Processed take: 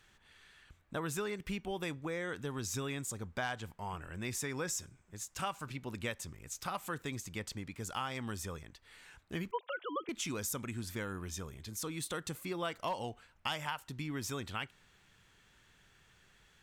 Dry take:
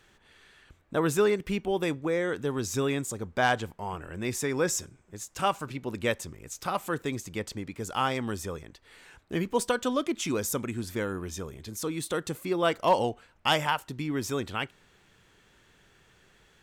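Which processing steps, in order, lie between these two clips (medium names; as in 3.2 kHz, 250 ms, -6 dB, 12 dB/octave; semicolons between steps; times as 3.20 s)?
9.51–10.09 s: formants replaced by sine waves; peaking EQ 410 Hz -7 dB 1.8 oct; compression 4:1, threshold -31 dBFS, peak gain reduction 9.5 dB; trim -3 dB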